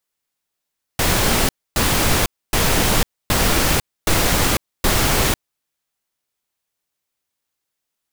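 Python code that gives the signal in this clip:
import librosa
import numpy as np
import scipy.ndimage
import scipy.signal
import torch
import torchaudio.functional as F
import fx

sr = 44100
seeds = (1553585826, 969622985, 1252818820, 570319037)

y = fx.noise_burst(sr, seeds[0], colour='pink', on_s=0.5, off_s=0.27, bursts=6, level_db=-16.5)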